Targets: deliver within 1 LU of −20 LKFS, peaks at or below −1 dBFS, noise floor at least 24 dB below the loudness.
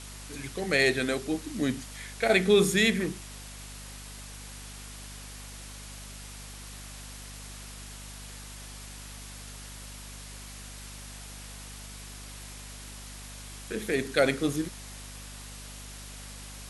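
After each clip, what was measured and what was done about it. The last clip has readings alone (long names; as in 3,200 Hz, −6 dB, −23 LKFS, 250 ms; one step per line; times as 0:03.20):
mains hum 50 Hz; hum harmonics up to 250 Hz; level of the hum −44 dBFS; background noise floor −44 dBFS; target noise floor −51 dBFS; integrated loudness −27.0 LKFS; sample peak −9.0 dBFS; target loudness −20.0 LKFS
→ hum removal 50 Hz, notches 5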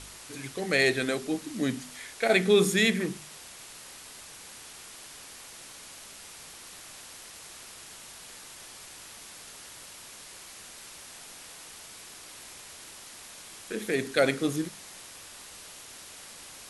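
mains hum none found; background noise floor −47 dBFS; target noise floor −51 dBFS
→ broadband denoise 6 dB, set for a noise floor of −47 dBFS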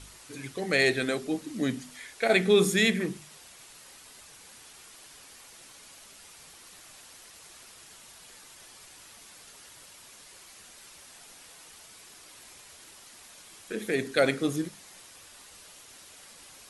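background noise floor −52 dBFS; integrated loudness −27.0 LKFS; sample peak −9.5 dBFS; target loudness −20.0 LKFS
→ level +7 dB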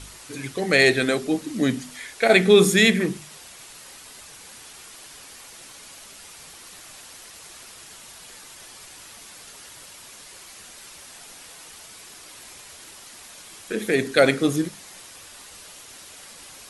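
integrated loudness −20.0 LKFS; sample peak −2.5 dBFS; background noise floor −45 dBFS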